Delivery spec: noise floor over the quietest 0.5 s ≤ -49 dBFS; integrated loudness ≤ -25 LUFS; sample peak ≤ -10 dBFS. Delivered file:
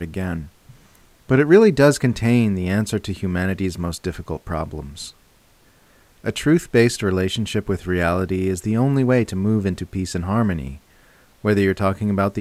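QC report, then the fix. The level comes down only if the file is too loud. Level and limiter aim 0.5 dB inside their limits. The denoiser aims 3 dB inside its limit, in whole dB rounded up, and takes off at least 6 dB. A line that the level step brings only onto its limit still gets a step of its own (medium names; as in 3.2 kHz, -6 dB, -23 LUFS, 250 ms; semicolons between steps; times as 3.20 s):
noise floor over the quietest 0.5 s -55 dBFS: pass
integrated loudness -20.0 LUFS: fail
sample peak -1.5 dBFS: fail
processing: trim -5.5 dB; peak limiter -10.5 dBFS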